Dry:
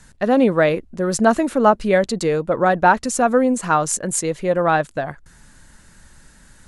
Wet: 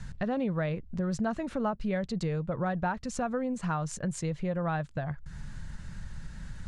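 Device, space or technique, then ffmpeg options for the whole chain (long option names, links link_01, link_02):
jukebox: -af "lowpass=5300,lowshelf=frequency=210:width_type=q:width=1.5:gain=10,acompressor=threshold=-34dB:ratio=3"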